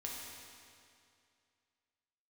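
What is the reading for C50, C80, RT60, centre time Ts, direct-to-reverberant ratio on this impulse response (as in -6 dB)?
0.0 dB, 1.0 dB, 2.4 s, 0.119 s, -3.5 dB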